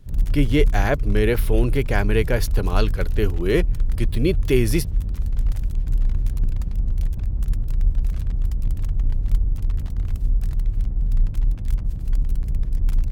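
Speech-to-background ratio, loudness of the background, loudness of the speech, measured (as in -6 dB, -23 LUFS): 2.5 dB, -26.0 LUFS, -23.5 LUFS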